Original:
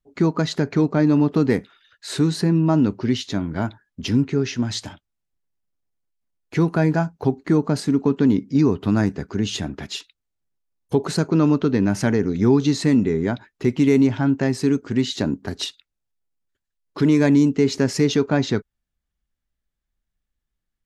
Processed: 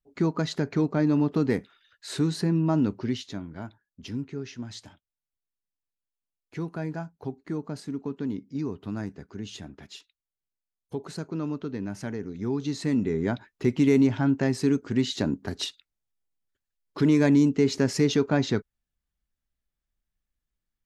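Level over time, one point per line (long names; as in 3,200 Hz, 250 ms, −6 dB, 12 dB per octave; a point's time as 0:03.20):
0:02.98 −6 dB
0:03.55 −14 dB
0:12.39 −14 dB
0:13.31 −4 dB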